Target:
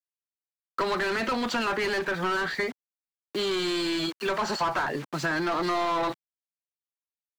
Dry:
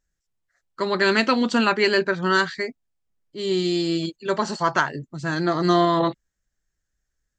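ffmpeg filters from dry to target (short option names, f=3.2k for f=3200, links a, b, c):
-filter_complex "[0:a]acrusher=bits=7:mix=0:aa=0.000001,asplit=2[a][b];[b]highpass=f=720:p=1,volume=27dB,asoftclip=type=tanh:threshold=-5.5dB[c];[a][c]amix=inputs=2:normalize=0,lowpass=f=1.7k:p=1,volume=-6dB,acrossover=split=160|880[d][e][f];[d]acompressor=threshold=-42dB:ratio=4[g];[e]acompressor=threshold=-28dB:ratio=4[h];[f]acompressor=threshold=-27dB:ratio=4[i];[g][h][i]amix=inputs=3:normalize=0,volume=-3dB"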